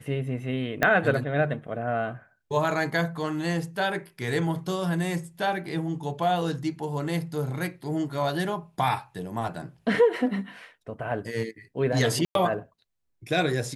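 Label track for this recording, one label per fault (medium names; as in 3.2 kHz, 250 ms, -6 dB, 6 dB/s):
0.830000	0.830000	pop -8 dBFS
12.250000	12.350000	dropout 102 ms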